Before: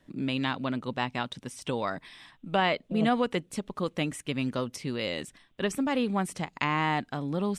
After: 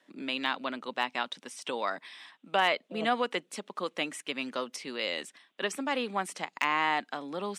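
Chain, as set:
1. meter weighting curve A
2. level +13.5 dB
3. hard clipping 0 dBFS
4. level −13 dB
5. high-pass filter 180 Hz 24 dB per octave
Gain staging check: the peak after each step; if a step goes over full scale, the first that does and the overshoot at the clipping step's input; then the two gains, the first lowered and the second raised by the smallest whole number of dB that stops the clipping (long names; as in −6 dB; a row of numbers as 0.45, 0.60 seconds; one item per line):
−9.0, +4.5, 0.0, −13.0, −11.5 dBFS
step 2, 4.5 dB
step 2 +8.5 dB, step 4 −8 dB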